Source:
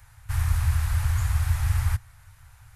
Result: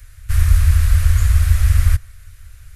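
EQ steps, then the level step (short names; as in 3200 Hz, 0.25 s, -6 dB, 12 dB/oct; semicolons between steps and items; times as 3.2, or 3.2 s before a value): fixed phaser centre 360 Hz, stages 4; dynamic EQ 830 Hz, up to +5 dB, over -54 dBFS, Q 1; low shelf 88 Hz +9.5 dB; +8.0 dB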